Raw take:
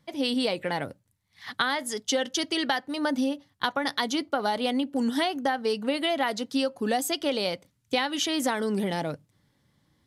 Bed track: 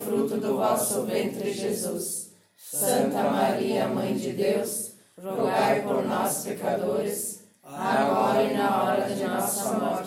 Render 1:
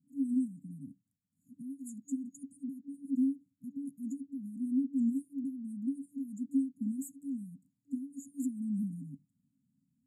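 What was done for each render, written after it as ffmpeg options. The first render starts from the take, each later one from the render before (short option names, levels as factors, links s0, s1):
-filter_complex "[0:a]afftfilt=real='re*(1-between(b*sr/4096,290,6700))':imag='im*(1-between(b*sr/4096,290,6700))':win_size=4096:overlap=0.75,acrossover=split=190 4500:gain=0.0708 1 0.141[s0][s1][s2];[s0][s1][s2]amix=inputs=3:normalize=0"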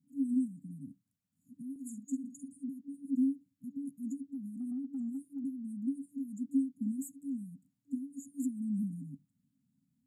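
-filter_complex "[0:a]asettb=1/sr,asplit=3[s0][s1][s2];[s0]atrim=end=1.714[s3];[s1]atrim=start=1.71:end=2.64,asetpts=PTS-STARTPTS,afade=t=in:d=0.004:c=qsin,afade=t=out:st=0.926:d=0.004:c=qsin,asplit=2[s4][s5];[s5]adelay=48,volume=0.355[s6];[s4][s6]amix=inputs=2:normalize=0,atrim=end_sample=41013[s7];[s2]atrim=start=2.636[s8];[s3][s7]acrossfade=d=0.004:c1=hsin:c2=qsin[s9];[s9][s8]acrossfade=d=0.004:c1=qsin:c2=hsin,asettb=1/sr,asplit=3[s10][s11][s12];[s10]atrim=end=4.324[s13];[s11]atrim=start=4.32:end=5.44,asetpts=PTS-STARTPTS,afade=t=in:d=0.004:c=qsin,afade=t=out:st=1.116:d=0.004:c=qsin,acompressor=threshold=0.0178:ratio=6:attack=3.2:release=140:knee=1:detection=peak[s14];[s12]atrim=start=5.436[s15];[s13][s14]acrossfade=d=0.004:c1=hsin:c2=qsin[s16];[s16][s15]acrossfade=d=0.004:c1=qsin:c2=hsin"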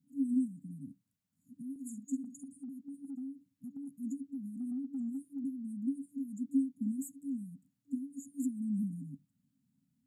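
-filter_complex "[0:a]asettb=1/sr,asplit=3[s0][s1][s2];[s0]atrim=end=2.244[s3];[s1]atrim=start=2.24:end=3.93,asetpts=PTS-STARTPTS,afade=t=in:d=0.004:c=qsin,afade=t=out:st=1.686:d=0.004:c=qsin,acompressor=threshold=0.01:ratio=6:attack=3.2:release=140:knee=1:detection=peak[s4];[s2]atrim=start=3.926[s5];[s3][s4]acrossfade=d=0.004:c1=hsin:c2=qsin[s6];[s6][s5]acrossfade=d=0.004:c1=qsin:c2=hsin"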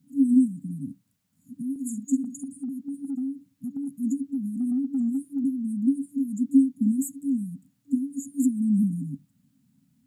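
-af "volume=3.98"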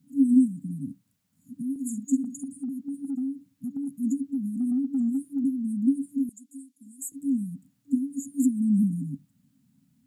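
-filter_complex "[0:a]asettb=1/sr,asplit=3[s0][s1][s2];[s0]atrim=end=6.294[s3];[s1]atrim=start=6.29:end=7.12,asetpts=PTS-STARTPTS,afade=t=in:d=0.004:c=qsin,afade=t=out:st=0.826:d=0.004:c=qsin,bandpass=f=7600:t=q:w=0.57[s4];[s2]atrim=start=7.116[s5];[s3][s4]acrossfade=d=0.004:c1=hsin:c2=qsin[s6];[s6][s5]acrossfade=d=0.004:c1=qsin:c2=hsin"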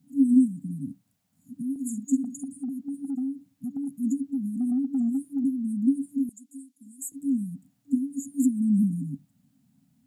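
-af "equalizer=f=720:t=o:w=0.43:g=9"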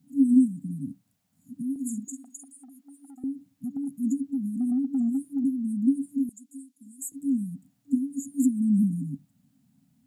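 -filter_complex "[0:a]asettb=1/sr,asplit=3[s0][s1][s2];[s0]atrim=end=2.084[s3];[s1]atrim=start=2.08:end=3.24,asetpts=PTS-STARTPTS,afade=t=in:d=0.004:c=qsin,afade=t=out:st=1.156:d=0.004:c=qsin,highpass=720[s4];[s2]atrim=start=3.236[s5];[s3][s4]acrossfade=d=0.004:c1=hsin:c2=qsin[s6];[s6][s5]acrossfade=d=0.004:c1=qsin:c2=hsin"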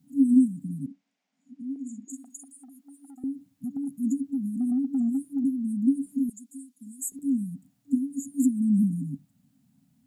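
-filter_complex "[0:a]asettb=1/sr,asplit=3[s0][s1][s2];[s0]atrim=end=0.864[s3];[s1]atrim=start=0.86:end=2.1,asetpts=PTS-STARTPTS,afade=t=in:d=0.004:c=qsin,afade=t=out:st=1.236:d=0.004:c=qsin,highpass=f=270:w=0.5412,highpass=f=270:w=1.3066,equalizer=f=1200:t=q:w=4:g=-3,equalizer=f=2200:t=q:w=4:g=5,equalizer=f=4200:t=q:w=4:g=-4,lowpass=f=5800:w=0.5412,lowpass=f=5800:w=1.3066[s4];[s2]atrim=start=2.096[s5];[s3][s4]acrossfade=d=0.004:c1=hsin:c2=qsin[s6];[s6][s5]acrossfade=d=0.004:c1=qsin:c2=hsin,asettb=1/sr,asplit=3[s7][s8][s9];[s7]atrim=end=6.064[s10];[s8]atrim=start=6.06:end=7.19,asetpts=PTS-STARTPTS,afade=t=in:d=0.004:c=qsin,afade=t=out:st=1.126:d=0.004:c=qsin,aecho=1:1:4.9:0.93,atrim=end_sample=49833[s11];[s9]atrim=start=7.186[s12];[s10][s11]acrossfade=d=0.004:c1=hsin:c2=qsin[s13];[s13][s12]acrossfade=d=0.004:c1=qsin:c2=hsin"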